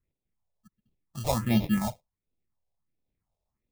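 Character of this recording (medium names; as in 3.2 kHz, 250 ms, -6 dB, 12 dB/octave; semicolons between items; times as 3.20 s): aliases and images of a low sample rate 1.5 kHz, jitter 0%; phasing stages 4, 1.4 Hz, lowest notch 260–1500 Hz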